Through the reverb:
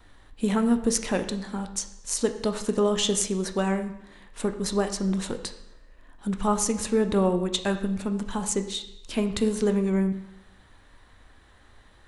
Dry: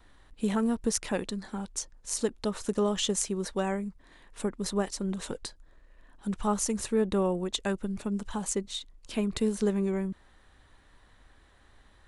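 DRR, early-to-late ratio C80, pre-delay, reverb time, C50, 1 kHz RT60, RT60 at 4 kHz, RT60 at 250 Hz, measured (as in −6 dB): 7.0 dB, 13.0 dB, 5 ms, 0.80 s, 10.5 dB, 0.80 s, 0.80 s, 0.85 s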